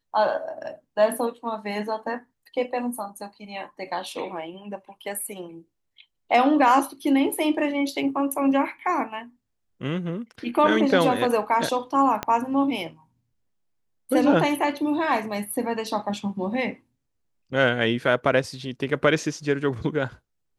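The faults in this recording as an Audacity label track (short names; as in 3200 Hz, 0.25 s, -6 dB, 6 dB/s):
12.230000	12.230000	pop -11 dBFS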